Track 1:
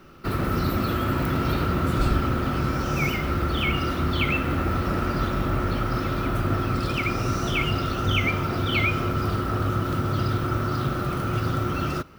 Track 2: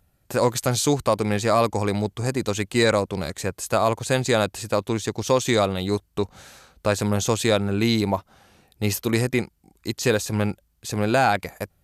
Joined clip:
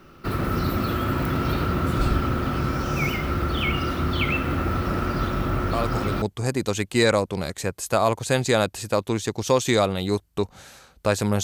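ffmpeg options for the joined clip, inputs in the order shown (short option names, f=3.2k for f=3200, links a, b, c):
-filter_complex "[1:a]asplit=2[a][b];[0:a]apad=whole_dur=11.43,atrim=end=11.43,atrim=end=6.222[c];[b]atrim=start=2.018:end=7.23[d];[a]atrim=start=1.53:end=2.02,asetpts=PTS-STARTPTS,volume=-7.5dB,afade=t=in:d=0.004:c=hsin,afade=t=out:st=0.486:d=0.004:c=hsin,adelay=252693S[e];[c][d]acrossfade=d=0.004:c1=hsin:c2=hsin[f];[f][e]amix=inputs=2:normalize=0"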